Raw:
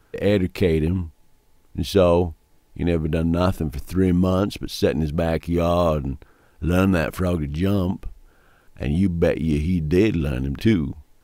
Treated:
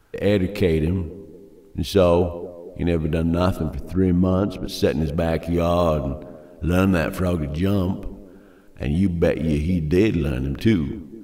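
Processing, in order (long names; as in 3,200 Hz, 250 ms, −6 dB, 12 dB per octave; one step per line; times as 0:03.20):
0:03.57–0:04.65: high-shelf EQ 2,400 Hz −11 dB
feedback echo with a band-pass in the loop 232 ms, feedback 56%, band-pass 380 Hz, level −15 dB
on a send at −17.5 dB: convolution reverb RT60 0.40 s, pre-delay 95 ms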